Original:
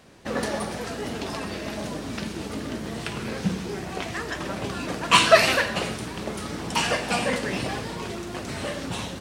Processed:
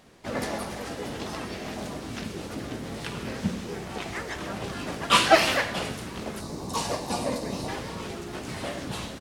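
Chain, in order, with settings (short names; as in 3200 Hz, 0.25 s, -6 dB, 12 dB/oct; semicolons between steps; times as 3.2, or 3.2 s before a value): harmoniser -12 st -9 dB, +3 st -3 dB; spectral gain 6.4–7.68, 1200–3600 Hz -10 dB; gain -5 dB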